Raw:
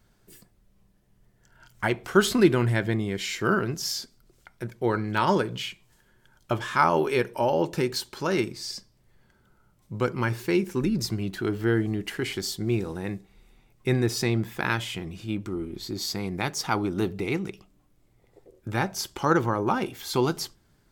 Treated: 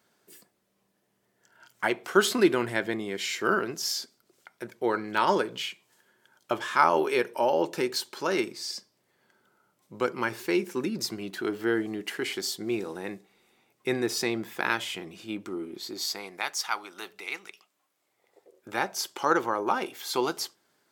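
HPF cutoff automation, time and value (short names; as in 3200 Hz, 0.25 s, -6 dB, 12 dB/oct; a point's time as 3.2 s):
15.73 s 310 Hz
16.69 s 1100 Hz
17.47 s 1100 Hz
18.68 s 400 Hz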